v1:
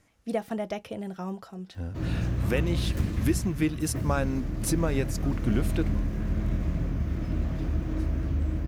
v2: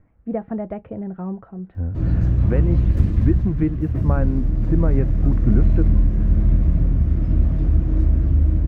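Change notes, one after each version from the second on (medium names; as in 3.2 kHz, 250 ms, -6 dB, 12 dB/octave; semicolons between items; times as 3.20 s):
speech: add low-pass 2 kHz 24 dB/octave; master: add tilt EQ -3 dB/octave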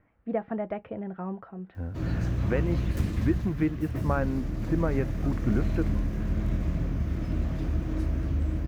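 master: add tilt EQ +3 dB/octave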